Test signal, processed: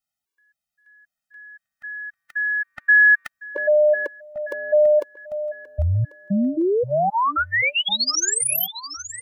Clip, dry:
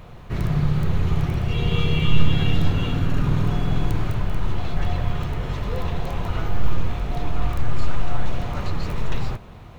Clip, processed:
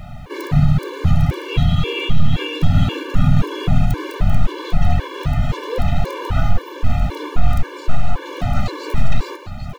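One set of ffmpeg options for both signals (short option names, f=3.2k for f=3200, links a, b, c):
-filter_complex "[0:a]alimiter=limit=-12.5dB:level=0:latency=1:release=83,asplit=2[a][b];[b]aecho=0:1:796|1592|2388|3184:0.224|0.0895|0.0358|0.0143[c];[a][c]amix=inputs=2:normalize=0,afftfilt=real='re*gt(sin(2*PI*1.9*pts/sr)*(1-2*mod(floor(b*sr/1024/300),2)),0)':imag='im*gt(sin(2*PI*1.9*pts/sr)*(1-2*mod(floor(b*sr/1024/300),2)),0)':win_size=1024:overlap=0.75,volume=9dB"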